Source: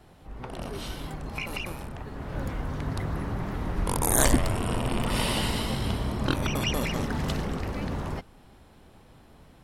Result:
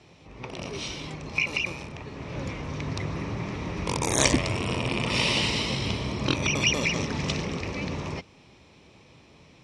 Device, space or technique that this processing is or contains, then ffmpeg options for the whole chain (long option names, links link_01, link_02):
car door speaker: -af "highpass=95,equalizer=frequency=230:width_type=q:width=4:gain=-4,equalizer=frequency=750:width_type=q:width=4:gain=-6,equalizer=frequency=1500:width_type=q:width=4:gain=-9,equalizer=frequency=2400:width_type=q:width=4:gain=10,equalizer=frequency=3800:width_type=q:width=4:gain=3,equalizer=frequency=5700:width_type=q:width=4:gain=9,lowpass=frequency=7500:width=0.5412,lowpass=frequency=7500:width=1.3066,volume=2dB"